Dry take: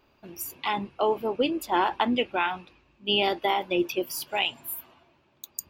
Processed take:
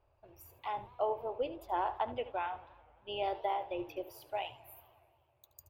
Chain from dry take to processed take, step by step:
drawn EQ curve 120 Hz 0 dB, 180 Hz −28 dB, 620 Hz −3 dB, 1,400 Hz −13 dB, 8,700 Hz −25 dB, 15,000 Hz −17 dB
single-tap delay 74 ms −15 dB
feedback echo with a swinging delay time 87 ms, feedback 75%, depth 214 cents, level −22 dB
level −1.5 dB

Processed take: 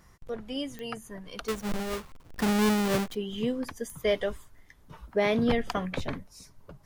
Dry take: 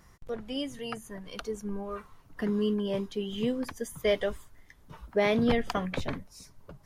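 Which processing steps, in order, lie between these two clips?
0:01.48–0:03.15: each half-wave held at its own peak
digital clicks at 0:00.79/0:03.90, −27 dBFS

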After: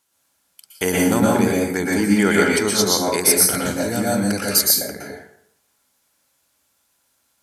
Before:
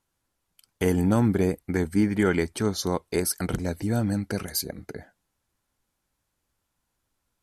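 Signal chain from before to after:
high-pass filter 320 Hz 6 dB per octave
high-shelf EQ 2,400 Hz +9 dB
dense smooth reverb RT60 0.67 s, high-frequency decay 0.65×, pre-delay 105 ms, DRR −3.5 dB
level +3.5 dB

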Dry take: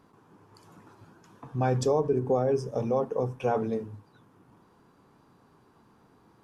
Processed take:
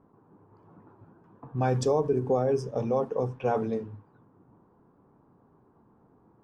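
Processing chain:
low-pass that shuts in the quiet parts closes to 890 Hz, open at −22 dBFS

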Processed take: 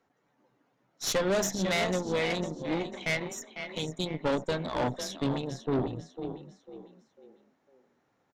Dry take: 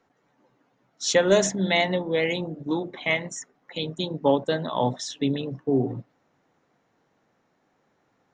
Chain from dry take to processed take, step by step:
echo with shifted repeats 499 ms, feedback 36%, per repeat +31 Hz, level −10.5 dB
tube saturation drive 23 dB, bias 0.8

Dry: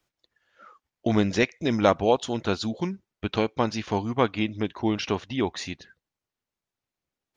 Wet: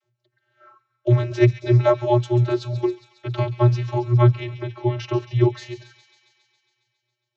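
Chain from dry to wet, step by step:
channel vocoder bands 32, square 121 Hz
delay with a high-pass on its return 137 ms, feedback 71%, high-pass 2,300 Hz, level −11 dB
level +7 dB

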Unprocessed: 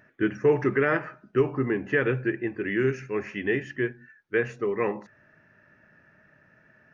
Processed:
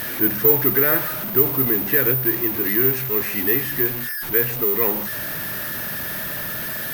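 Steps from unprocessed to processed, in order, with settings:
converter with a step at zero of −25.5 dBFS
bad sample-rate conversion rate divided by 3×, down filtered, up zero stuff
level −1 dB

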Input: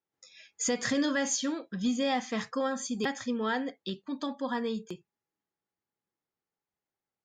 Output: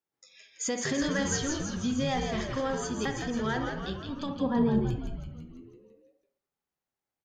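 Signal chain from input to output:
0:04.36–0:04.80: spectral tilt −4.5 dB per octave
echo with shifted repeats 166 ms, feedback 58%, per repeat −95 Hz, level −5 dB
on a send at −8 dB: convolution reverb RT60 0.55 s, pre-delay 43 ms
on the sum: level −2 dB

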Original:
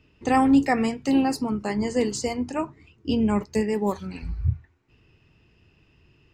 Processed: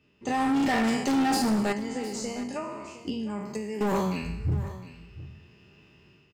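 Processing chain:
peak hold with a decay on every bin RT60 0.74 s
high-pass filter 95 Hz 12 dB per octave
comb filter 5 ms, depth 35%
0:01.72–0:03.81: downward compressor 10 to 1, threshold −33 dBFS, peak gain reduction 17 dB
brickwall limiter −14.5 dBFS, peak gain reduction 6.5 dB
automatic gain control gain up to 9 dB
hard clipping −15.5 dBFS, distortion −10 dB
single-tap delay 709 ms −15.5 dB
level −6.5 dB

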